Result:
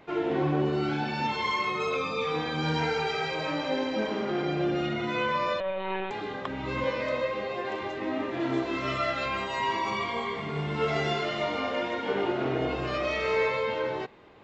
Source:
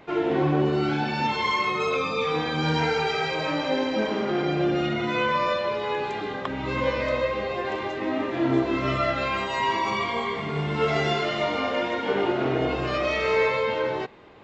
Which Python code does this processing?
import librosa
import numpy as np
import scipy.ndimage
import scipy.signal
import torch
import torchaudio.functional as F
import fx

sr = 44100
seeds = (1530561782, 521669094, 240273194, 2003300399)

y = fx.lpc_monotone(x, sr, seeds[0], pitch_hz=190.0, order=16, at=(5.6, 6.11))
y = fx.highpass(y, sr, hz=120.0, slope=12, at=(6.84, 7.82))
y = fx.tilt_eq(y, sr, slope=1.5, at=(8.4, 9.26))
y = y * librosa.db_to_amplitude(-4.0)